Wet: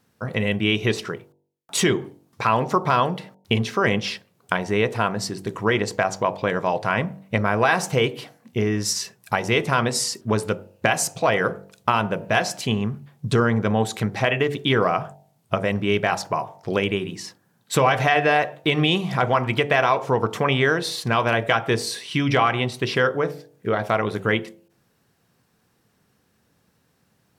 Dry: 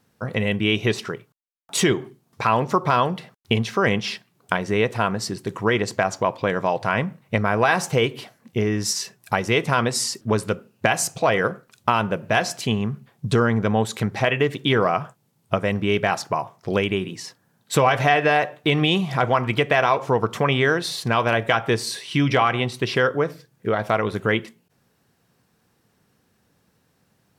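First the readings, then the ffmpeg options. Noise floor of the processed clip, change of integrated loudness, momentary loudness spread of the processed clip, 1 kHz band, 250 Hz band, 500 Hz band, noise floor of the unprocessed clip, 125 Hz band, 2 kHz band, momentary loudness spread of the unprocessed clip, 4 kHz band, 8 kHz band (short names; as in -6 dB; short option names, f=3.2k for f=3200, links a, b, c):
-66 dBFS, -0.5 dB, 8 LU, -0.5 dB, -0.5 dB, -0.5 dB, -66 dBFS, -0.5 dB, 0.0 dB, 8 LU, 0.0 dB, 0.0 dB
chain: -af "bandreject=f=48.14:t=h:w=4,bandreject=f=96.28:t=h:w=4,bandreject=f=144.42:t=h:w=4,bandreject=f=192.56:t=h:w=4,bandreject=f=240.7:t=h:w=4,bandreject=f=288.84:t=h:w=4,bandreject=f=336.98:t=h:w=4,bandreject=f=385.12:t=h:w=4,bandreject=f=433.26:t=h:w=4,bandreject=f=481.4:t=h:w=4,bandreject=f=529.54:t=h:w=4,bandreject=f=577.68:t=h:w=4,bandreject=f=625.82:t=h:w=4,bandreject=f=673.96:t=h:w=4,bandreject=f=722.1:t=h:w=4,bandreject=f=770.24:t=h:w=4,bandreject=f=818.38:t=h:w=4,bandreject=f=866.52:t=h:w=4,bandreject=f=914.66:t=h:w=4,bandreject=f=962.8:t=h:w=4"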